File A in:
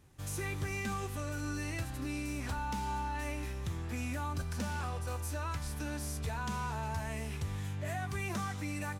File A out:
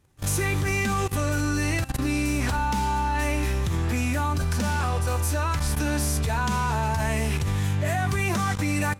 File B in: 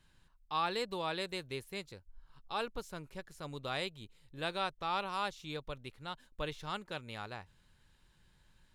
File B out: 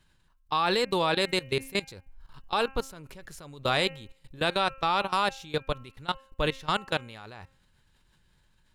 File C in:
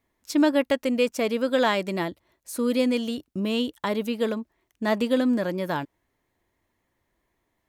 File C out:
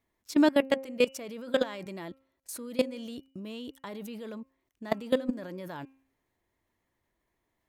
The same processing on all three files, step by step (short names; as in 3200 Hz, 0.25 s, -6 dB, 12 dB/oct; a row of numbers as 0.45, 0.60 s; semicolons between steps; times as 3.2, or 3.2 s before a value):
level quantiser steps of 20 dB; de-hum 267.4 Hz, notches 11; normalise peaks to -12 dBFS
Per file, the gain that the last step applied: +16.0, +15.0, +0.5 dB